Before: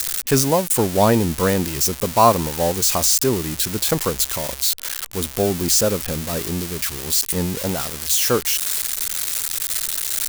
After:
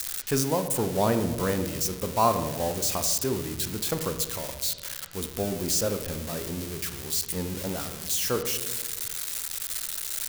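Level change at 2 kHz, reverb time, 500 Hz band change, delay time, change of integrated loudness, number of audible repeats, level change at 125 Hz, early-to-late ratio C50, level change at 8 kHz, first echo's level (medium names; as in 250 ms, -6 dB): -8.5 dB, 1.3 s, -8.0 dB, no echo, -8.5 dB, no echo, -8.0 dB, 10.0 dB, -9.0 dB, no echo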